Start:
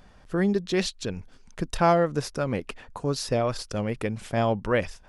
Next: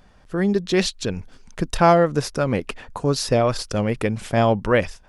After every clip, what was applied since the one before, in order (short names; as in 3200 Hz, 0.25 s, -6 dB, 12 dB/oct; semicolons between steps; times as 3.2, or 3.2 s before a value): AGC gain up to 6.5 dB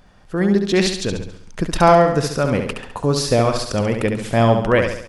feedback echo 69 ms, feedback 48%, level -6 dB; gain +2 dB